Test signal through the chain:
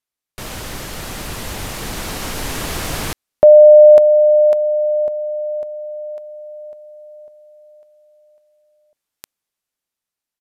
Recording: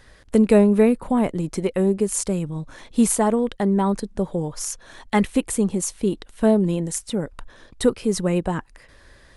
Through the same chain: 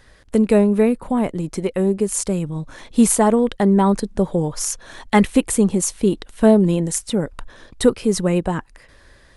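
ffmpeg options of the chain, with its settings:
-af "dynaudnorm=f=890:g=5:m=11dB,aresample=32000,aresample=44100"

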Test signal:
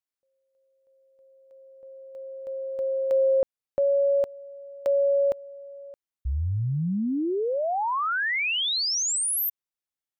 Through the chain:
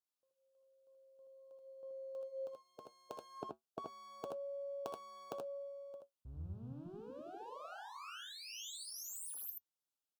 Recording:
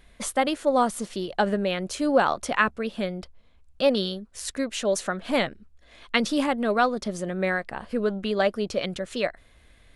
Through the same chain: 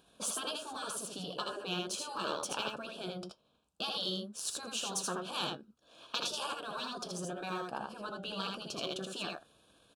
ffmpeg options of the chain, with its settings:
-filter_complex "[0:a]aeval=exprs='if(lt(val(0),0),0.708*val(0),val(0))':c=same,aeval=exprs='0.501*(cos(1*acos(clip(val(0)/0.501,-1,1)))-cos(1*PI/2))+0.0224*(cos(3*acos(clip(val(0)/0.501,-1,1)))-cos(3*PI/2))':c=same,highpass=170,afftfilt=real='re*lt(hypot(re,im),0.141)':imag='im*lt(hypot(re,im),0.141)':win_size=1024:overlap=0.75,flanger=delay=6.2:depth=1.3:regen=-71:speed=0.51:shape=sinusoidal,asuperstop=centerf=2000:order=4:qfactor=1.9,asplit=2[a][b];[b]aecho=0:1:65|79:0.237|0.668[c];[a][c]amix=inputs=2:normalize=0,volume=2.5dB" -ar 48000 -c:a aac -b:a 192k

